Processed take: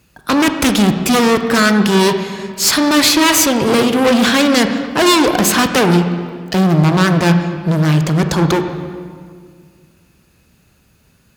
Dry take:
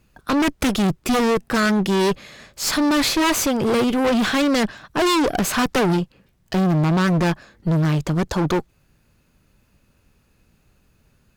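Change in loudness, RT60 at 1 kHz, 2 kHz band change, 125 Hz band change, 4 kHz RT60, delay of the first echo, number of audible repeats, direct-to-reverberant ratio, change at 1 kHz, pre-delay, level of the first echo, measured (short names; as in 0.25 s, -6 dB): +7.0 dB, 1.8 s, +8.0 dB, +7.0 dB, 1.4 s, none, none, 6.5 dB, +6.5 dB, 24 ms, none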